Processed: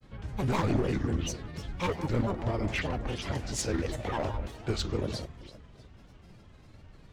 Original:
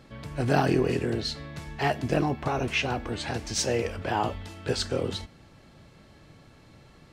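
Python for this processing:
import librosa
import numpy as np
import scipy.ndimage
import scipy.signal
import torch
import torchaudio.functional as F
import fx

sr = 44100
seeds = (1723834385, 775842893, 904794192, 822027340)

p1 = np.clip(10.0 ** (20.5 / 20.0) * x, -1.0, 1.0) / 10.0 ** (20.5 / 20.0)
p2 = p1 + fx.echo_alternate(p1, sr, ms=166, hz=1500.0, feedback_pct=54, wet_db=-9.5, dry=0)
p3 = fx.granulator(p2, sr, seeds[0], grain_ms=100.0, per_s=20.0, spray_ms=10.0, spread_st=7)
p4 = fx.low_shelf(p3, sr, hz=89.0, db=12.0)
y = p4 * 10.0 ** (-3.5 / 20.0)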